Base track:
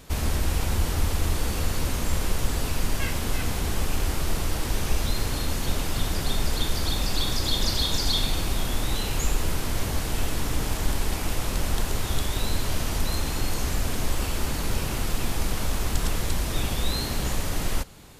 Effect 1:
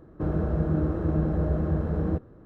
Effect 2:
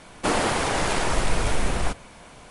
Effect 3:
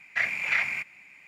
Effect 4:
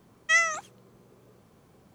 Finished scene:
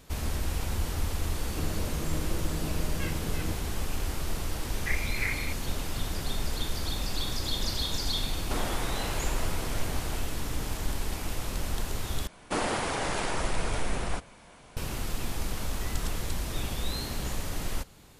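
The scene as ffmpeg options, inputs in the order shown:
ffmpeg -i bed.wav -i cue0.wav -i cue1.wav -i cue2.wav -i cue3.wav -filter_complex "[2:a]asplit=2[link_01][link_02];[0:a]volume=-6dB[link_03];[1:a]alimiter=limit=-23dB:level=0:latency=1:release=71[link_04];[3:a]highshelf=frequency=3000:width_type=q:width=3:gain=-10.5[link_05];[4:a]acompressor=threshold=-45dB:ratio=6:attack=3.2:release=140:knee=1:detection=peak[link_06];[link_03]asplit=2[link_07][link_08];[link_07]atrim=end=12.274[link_09];[link_02]atrim=end=2.5,asetpts=PTS-STARTPTS,volume=-6.5dB[link_10];[link_08]atrim=start=14.766[link_11];[link_04]atrim=end=2.45,asetpts=PTS-STARTPTS,volume=-5.5dB,afade=type=in:duration=0.004:curve=hsin,afade=type=out:start_time=2.446:duration=0.004:curve=hsin,adelay=1370[link_12];[link_05]atrim=end=1.27,asetpts=PTS-STARTPTS,volume=-13dB,afade=type=in:duration=0.004:curve=hsin,afade=type=out:start_time=1.266:duration=0.004:curve=hsin,adelay=4700[link_13];[link_01]atrim=end=2.5,asetpts=PTS-STARTPTS,volume=-12dB,afade=type=in:duration=0.004:curve=hsin,afade=type=out:start_time=2.496:duration=0.004:curve=hsin,adelay=364266S[link_14];[link_06]atrim=end=1.94,asetpts=PTS-STARTPTS,volume=-5dB,afade=type=in:duration=0.004:curve=hsin,afade=type=out:start_time=1.936:duration=0.004:curve=hsin,adelay=15520[link_15];[link_09][link_10]acrossfade=duration=0.004:curve1=hsin:curve2=hsin[link_16];[link_16][link_11]acrossfade=duration=0.004:curve1=hsin:curve2=hsin[link_17];[link_17][link_12][link_13][link_14][link_15]amix=inputs=5:normalize=0" out.wav

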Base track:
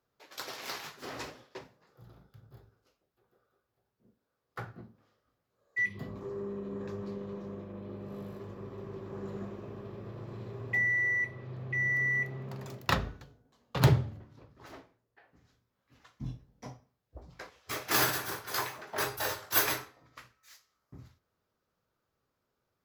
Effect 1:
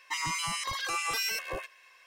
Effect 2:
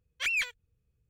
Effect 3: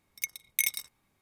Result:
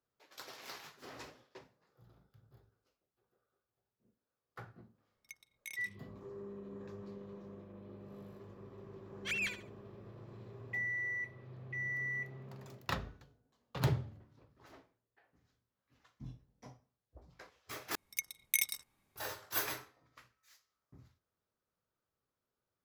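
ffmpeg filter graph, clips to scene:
ffmpeg -i bed.wav -i cue0.wav -i cue1.wav -i cue2.wav -filter_complex "[3:a]asplit=2[link_01][link_02];[0:a]volume=-9dB[link_03];[link_01]aemphasis=mode=reproduction:type=50kf[link_04];[2:a]aecho=1:1:70|140|210:0.282|0.0789|0.0221[link_05];[link_03]asplit=2[link_06][link_07];[link_06]atrim=end=17.954[link_08];[link_02]atrim=end=1.21,asetpts=PTS-STARTPTS,volume=-4dB[link_09];[link_07]atrim=start=19.156[link_10];[link_04]atrim=end=1.21,asetpts=PTS-STARTPTS,volume=-14dB,afade=type=in:duration=0.004:curve=hsin,afade=type=out:start_time=1.206:duration=0.004:curve=hsin,adelay=5070[link_11];[link_05]atrim=end=1.09,asetpts=PTS-STARTPTS,volume=-7.5dB,afade=type=in:duration=0.004:curve=hsin,afade=type=out:start_time=1.086:duration=0.004:curve=hsin,adelay=9050[link_12];[link_08][link_09]acrossfade=duration=0.004:curve1=hsin:curve2=hsin[link_13];[link_13][link_10]acrossfade=duration=0.004:curve1=hsin:curve2=hsin[link_14];[link_14][link_11][link_12]amix=inputs=3:normalize=0" out.wav

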